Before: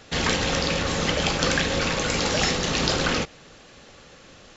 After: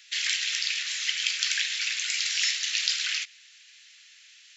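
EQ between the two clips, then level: steep high-pass 1.9 kHz 36 dB/octave; 0.0 dB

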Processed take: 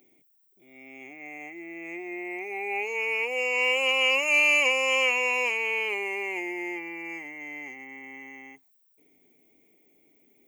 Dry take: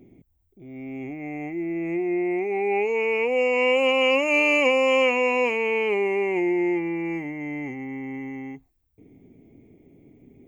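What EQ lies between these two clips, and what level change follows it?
high-pass 500 Hz 6 dB/octave; tilt EQ +3.5 dB/octave; -3.5 dB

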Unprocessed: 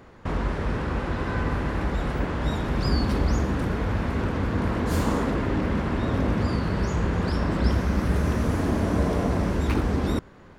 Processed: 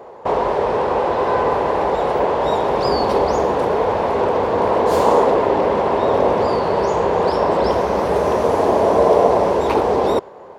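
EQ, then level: high-pass 230 Hz 6 dB/octave; high-order bell 630 Hz +16 dB; dynamic bell 3.6 kHz, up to +5 dB, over -37 dBFS, Q 0.71; +1.5 dB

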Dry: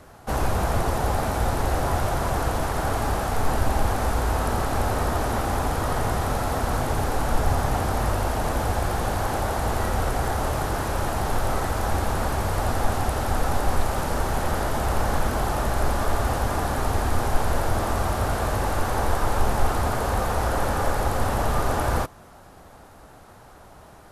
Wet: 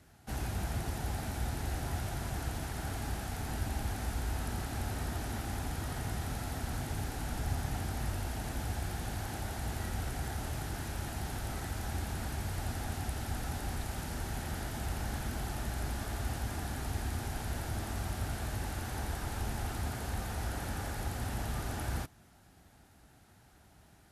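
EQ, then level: high-pass 43 Hz; peaking EQ 520 Hz -11.5 dB 0.88 oct; peaking EQ 1.1 kHz -11 dB 0.62 oct; -9.0 dB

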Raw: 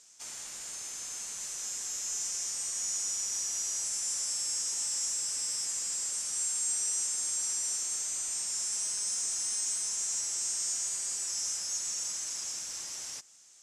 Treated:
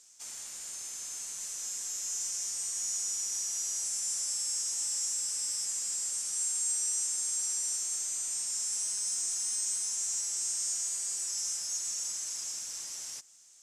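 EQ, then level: treble shelf 5 kHz +4.5 dB; treble shelf 10 kHz +4.5 dB; -4.5 dB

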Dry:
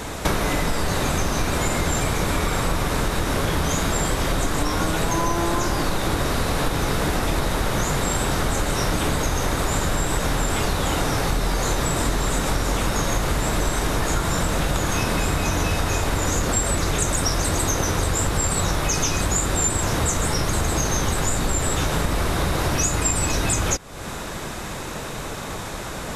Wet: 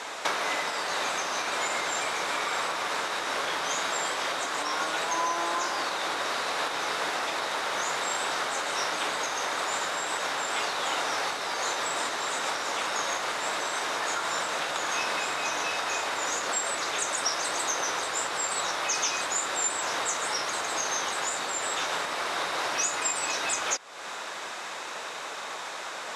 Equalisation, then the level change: band-pass 710–6400 Hz; -1.5 dB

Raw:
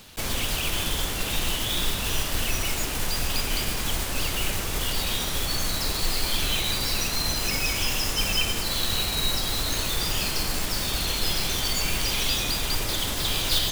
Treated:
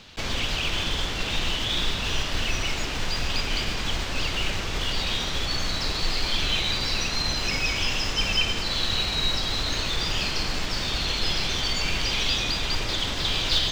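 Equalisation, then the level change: distance through air 180 m; treble shelf 2.7 kHz +10 dB; 0.0 dB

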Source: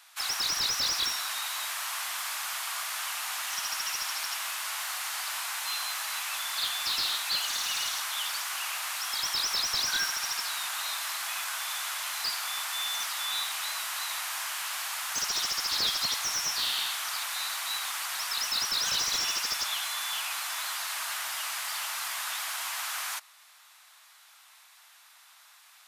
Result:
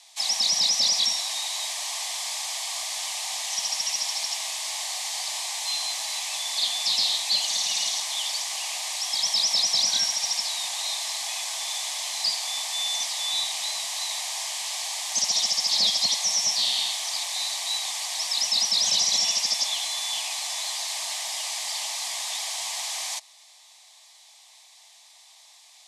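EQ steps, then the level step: cabinet simulation 150–9400 Hz, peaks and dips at 300 Hz -9 dB, 490 Hz -6 dB, 1 kHz -4 dB, 1.6 kHz -6 dB, 2.7 kHz -6 dB, 9.4 kHz -4 dB; static phaser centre 370 Hz, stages 6; +8.5 dB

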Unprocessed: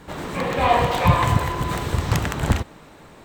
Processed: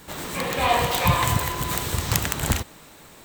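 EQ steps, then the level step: treble shelf 2.6 kHz +11 dB; treble shelf 11 kHz +10.5 dB; -4.5 dB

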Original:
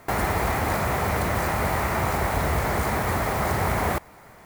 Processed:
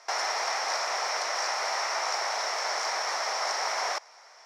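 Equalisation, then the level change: high-pass 590 Hz 24 dB/octave; resonant low-pass 5.5 kHz, resonance Q 12; -4.0 dB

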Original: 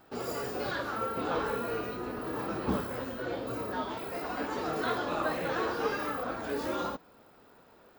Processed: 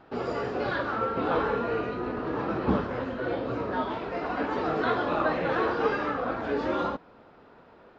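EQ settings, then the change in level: Gaussian low-pass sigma 2.1 samples; +5.5 dB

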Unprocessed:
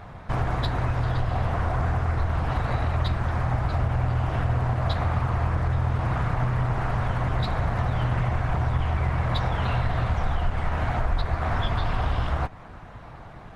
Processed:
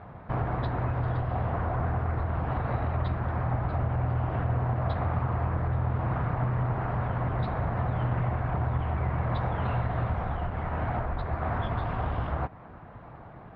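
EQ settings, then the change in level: high-pass 110 Hz 6 dB/octave; distance through air 280 m; treble shelf 2.1 kHz -9 dB; 0.0 dB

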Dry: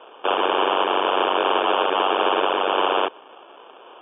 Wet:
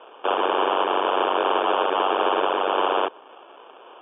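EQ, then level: dynamic bell 2.5 kHz, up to -3 dB, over -40 dBFS, Q 1.3; distance through air 130 m; bass shelf 120 Hz -10 dB; 0.0 dB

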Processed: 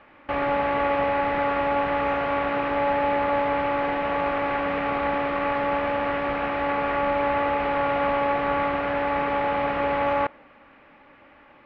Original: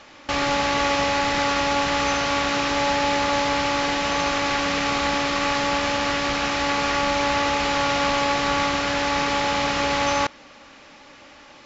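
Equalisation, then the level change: low-pass 2.4 kHz 24 dB/octave; dynamic bell 590 Hz, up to +6 dB, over -36 dBFS, Q 1; -4.5 dB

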